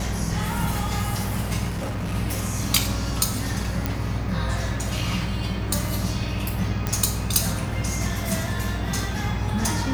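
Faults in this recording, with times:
mains buzz 60 Hz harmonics 13 −30 dBFS
0:01.70–0:02.15: clipping −24.5 dBFS
0:03.86: click
0:06.87: click

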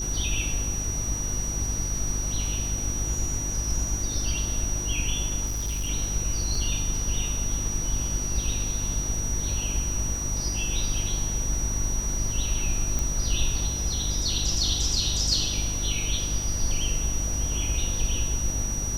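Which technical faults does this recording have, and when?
mains hum 50 Hz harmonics 7 −32 dBFS
whistle 5,800 Hz −30 dBFS
0:05.45–0:05.90: clipping −25 dBFS
0:06.55: drop-out 3 ms
0:12.99: click

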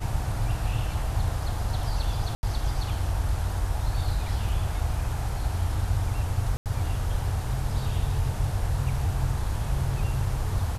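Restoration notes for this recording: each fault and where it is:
0:02.35–0:02.43: drop-out 80 ms
0:06.57–0:06.66: drop-out 88 ms

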